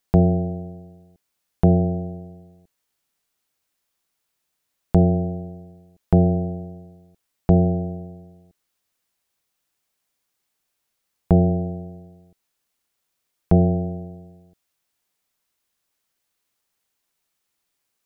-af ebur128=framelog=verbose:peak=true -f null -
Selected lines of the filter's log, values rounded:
Integrated loudness:
  I:         -20.8 LUFS
  Threshold: -33.7 LUFS
Loudness range:
  LRA:         4.1 LU
  Threshold: -46.3 LUFS
  LRA low:   -28.0 LUFS
  LRA high:  -23.9 LUFS
True peak:
  Peak:       -2.9 dBFS